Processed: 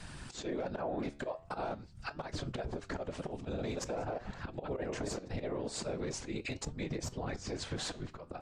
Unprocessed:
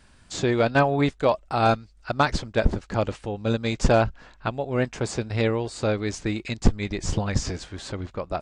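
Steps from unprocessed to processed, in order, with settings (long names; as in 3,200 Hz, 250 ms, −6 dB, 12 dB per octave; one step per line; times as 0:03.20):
0:03.02–0:05.28: delay that plays each chunk backwards 129 ms, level −7 dB
volume swells 676 ms
soft clipping −27.5 dBFS, distortion −14 dB
dynamic equaliser 520 Hz, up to +8 dB, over −50 dBFS, Q 0.71
downward compressor 6 to 1, threshold −39 dBFS, peak gain reduction 14 dB
random phases in short frames
brickwall limiter −36.5 dBFS, peak gain reduction 8.5 dB
flanger 0.44 Hz, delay 5.9 ms, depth 8.3 ms, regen +84%
level +12.5 dB
Ogg Vorbis 96 kbit/s 32,000 Hz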